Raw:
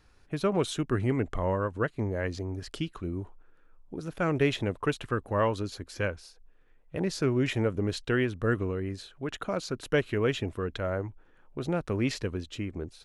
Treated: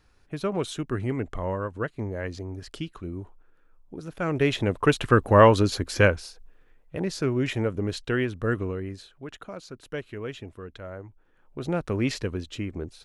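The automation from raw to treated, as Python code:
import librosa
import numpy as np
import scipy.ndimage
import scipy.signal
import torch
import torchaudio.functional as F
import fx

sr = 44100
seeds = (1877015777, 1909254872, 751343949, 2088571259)

y = fx.gain(x, sr, db=fx.line((4.17, -1.0), (5.17, 11.5), (6.04, 11.5), (6.99, 1.0), (8.71, 1.0), (9.55, -8.0), (11.04, -8.0), (11.75, 2.5)))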